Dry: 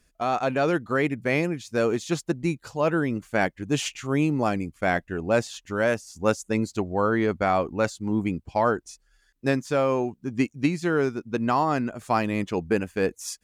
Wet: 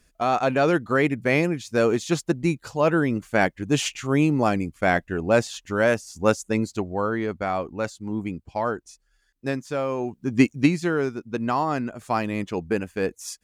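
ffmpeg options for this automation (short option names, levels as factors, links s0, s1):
-af "volume=4.73,afade=t=out:st=6.22:d=1:silence=0.473151,afade=t=in:st=9.97:d=0.48:silence=0.298538,afade=t=out:st=10.45:d=0.51:silence=0.398107"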